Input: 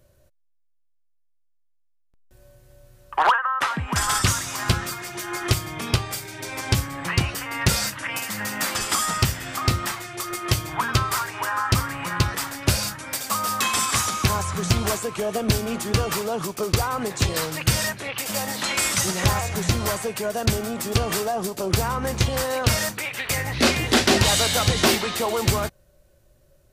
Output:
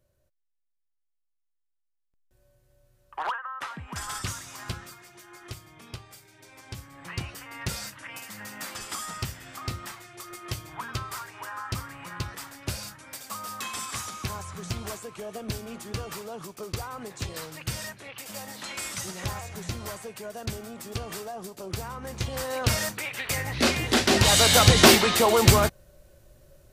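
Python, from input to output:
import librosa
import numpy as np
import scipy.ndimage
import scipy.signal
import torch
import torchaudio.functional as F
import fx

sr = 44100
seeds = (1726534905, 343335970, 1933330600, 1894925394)

y = fx.gain(x, sr, db=fx.line((4.59, -12.5), (5.31, -19.0), (6.75, -19.0), (7.17, -12.0), (22.03, -12.0), (22.67, -4.0), (24.07, -4.0), (24.54, 4.0)))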